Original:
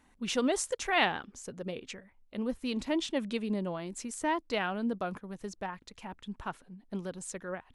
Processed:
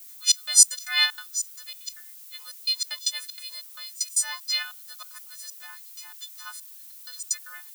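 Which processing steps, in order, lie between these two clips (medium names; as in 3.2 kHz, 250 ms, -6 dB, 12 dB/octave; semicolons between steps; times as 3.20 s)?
partials quantised in pitch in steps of 3 st; high-pass 1.3 kHz 24 dB/octave; resonant high shelf 3.4 kHz +7 dB, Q 3; 4.62–7.31 s: compression, threshold -37 dBFS, peak gain reduction 17 dB; trance gate ".xxx..xx.x.xxx" 191 bpm -24 dB; added noise violet -47 dBFS; trim +1.5 dB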